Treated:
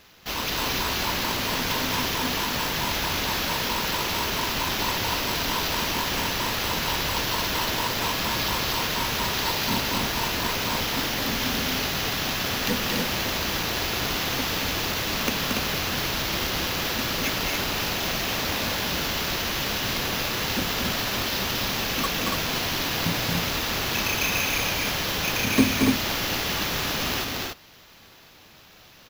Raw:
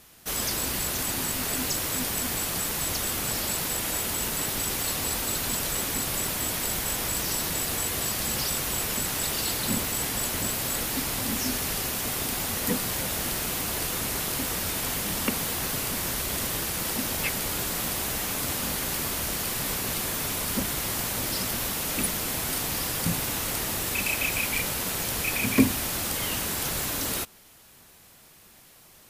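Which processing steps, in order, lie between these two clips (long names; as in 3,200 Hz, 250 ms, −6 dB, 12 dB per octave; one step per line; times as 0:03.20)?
decimation without filtering 5×
loudspeakers that aren't time-aligned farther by 78 metres −4 dB, 98 metres −4 dB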